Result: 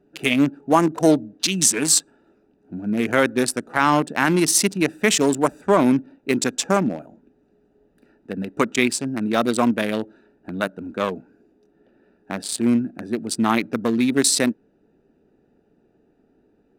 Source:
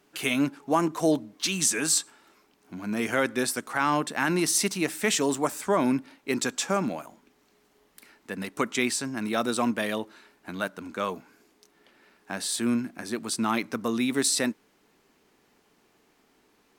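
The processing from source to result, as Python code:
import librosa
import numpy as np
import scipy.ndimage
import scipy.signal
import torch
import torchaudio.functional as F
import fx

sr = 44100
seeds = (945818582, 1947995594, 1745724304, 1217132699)

y = fx.wiener(x, sr, points=41)
y = y * librosa.db_to_amplitude(8.0)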